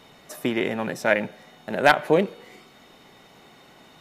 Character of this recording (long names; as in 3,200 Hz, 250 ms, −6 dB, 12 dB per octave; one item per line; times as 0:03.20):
background noise floor −52 dBFS
spectral slope −3.0 dB per octave